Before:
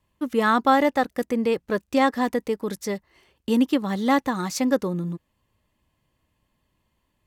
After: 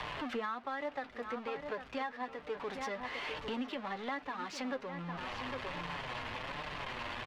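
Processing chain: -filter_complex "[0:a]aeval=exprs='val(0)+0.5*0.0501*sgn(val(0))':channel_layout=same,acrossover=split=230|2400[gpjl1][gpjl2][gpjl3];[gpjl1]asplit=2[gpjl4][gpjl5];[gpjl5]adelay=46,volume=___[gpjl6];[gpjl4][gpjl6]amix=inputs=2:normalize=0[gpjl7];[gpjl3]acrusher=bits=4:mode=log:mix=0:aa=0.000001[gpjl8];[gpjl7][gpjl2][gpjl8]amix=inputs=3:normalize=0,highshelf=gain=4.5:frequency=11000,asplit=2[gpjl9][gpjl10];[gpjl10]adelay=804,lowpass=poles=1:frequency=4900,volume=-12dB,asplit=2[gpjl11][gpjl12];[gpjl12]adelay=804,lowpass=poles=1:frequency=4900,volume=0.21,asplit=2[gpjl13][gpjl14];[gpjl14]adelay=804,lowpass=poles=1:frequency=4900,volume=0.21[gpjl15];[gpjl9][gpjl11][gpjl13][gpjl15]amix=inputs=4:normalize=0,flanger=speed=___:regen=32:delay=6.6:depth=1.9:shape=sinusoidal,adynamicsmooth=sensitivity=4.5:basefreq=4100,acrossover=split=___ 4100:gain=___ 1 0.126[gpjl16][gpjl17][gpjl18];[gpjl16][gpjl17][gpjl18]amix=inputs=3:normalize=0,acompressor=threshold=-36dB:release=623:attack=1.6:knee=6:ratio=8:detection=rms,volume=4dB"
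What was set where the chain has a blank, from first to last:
-12dB, 1.2, 540, 0.224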